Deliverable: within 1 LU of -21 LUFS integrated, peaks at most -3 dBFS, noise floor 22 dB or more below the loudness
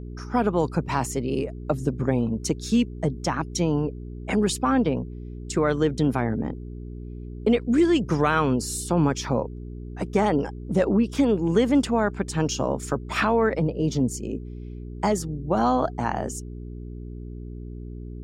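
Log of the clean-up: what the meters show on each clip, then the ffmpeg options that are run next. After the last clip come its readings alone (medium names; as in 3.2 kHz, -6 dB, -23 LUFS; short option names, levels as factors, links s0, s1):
hum 60 Hz; highest harmonic 420 Hz; hum level -34 dBFS; loudness -24.5 LUFS; peak level -8.5 dBFS; loudness target -21.0 LUFS
-> -af "bandreject=f=60:t=h:w=4,bandreject=f=120:t=h:w=4,bandreject=f=180:t=h:w=4,bandreject=f=240:t=h:w=4,bandreject=f=300:t=h:w=4,bandreject=f=360:t=h:w=4,bandreject=f=420:t=h:w=4"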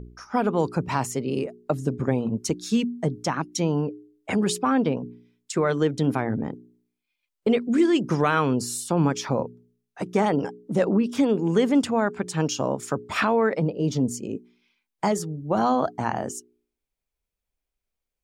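hum not found; loudness -25.0 LUFS; peak level -8.5 dBFS; loudness target -21.0 LUFS
-> -af "volume=1.58"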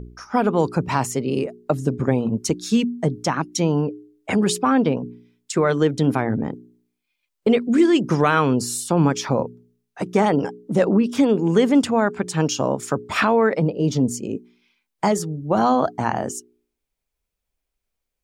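loudness -21.0 LUFS; peak level -4.5 dBFS; noise floor -80 dBFS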